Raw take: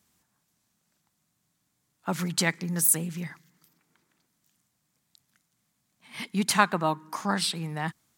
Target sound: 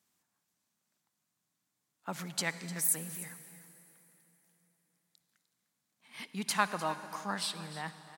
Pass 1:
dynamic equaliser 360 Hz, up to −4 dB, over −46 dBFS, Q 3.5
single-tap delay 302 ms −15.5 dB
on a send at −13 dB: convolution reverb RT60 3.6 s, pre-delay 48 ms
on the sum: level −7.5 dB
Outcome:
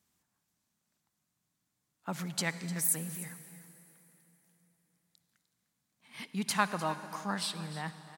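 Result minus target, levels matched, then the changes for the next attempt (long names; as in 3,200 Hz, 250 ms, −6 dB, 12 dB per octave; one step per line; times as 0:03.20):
250 Hz band +3.5 dB
add after dynamic equaliser: high-pass filter 240 Hz 6 dB per octave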